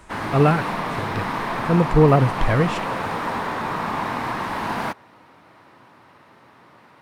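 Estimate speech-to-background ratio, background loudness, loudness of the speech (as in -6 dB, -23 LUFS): 6.0 dB, -26.0 LUFS, -20.0 LUFS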